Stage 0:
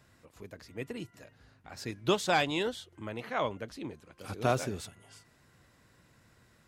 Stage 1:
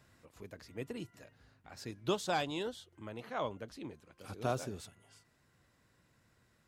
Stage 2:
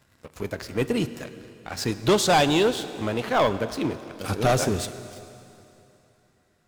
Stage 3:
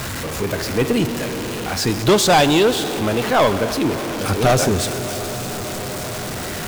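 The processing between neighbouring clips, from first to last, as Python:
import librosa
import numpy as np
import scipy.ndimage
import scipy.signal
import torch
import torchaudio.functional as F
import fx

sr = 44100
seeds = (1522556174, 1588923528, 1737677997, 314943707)

y1 = fx.dynamic_eq(x, sr, hz=2100.0, q=1.8, threshold_db=-51.0, ratio=4.0, max_db=-6)
y1 = fx.rider(y1, sr, range_db=4, speed_s=2.0)
y1 = y1 * librosa.db_to_amplitude(-6.5)
y2 = fx.leveller(y1, sr, passes=3)
y2 = fx.rev_plate(y2, sr, seeds[0], rt60_s=3.0, hf_ratio=0.95, predelay_ms=0, drr_db=12.0)
y2 = y2 * librosa.db_to_amplitude(7.5)
y3 = y2 + 0.5 * 10.0 ** (-25.0 / 20.0) * np.sign(y2)
y3 = y3 * librosa.db_to_amplitude(4.0)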